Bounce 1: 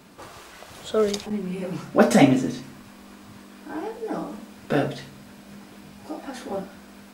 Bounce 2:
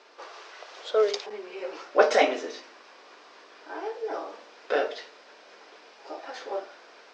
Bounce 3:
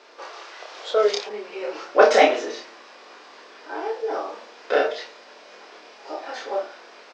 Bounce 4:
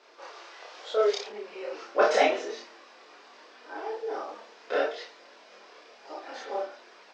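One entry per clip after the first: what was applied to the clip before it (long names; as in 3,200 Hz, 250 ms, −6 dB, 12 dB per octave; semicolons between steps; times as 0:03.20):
elliptic band-pass filter 420–5,600 Hz, stop band 40 dB
double-tracking delay 29 ms −2.5 dB; level +3.5 dB
multi-voice chorus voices 2, 0.38 Hz, delay 28 ms, depth 5 ms; level −3.5 dB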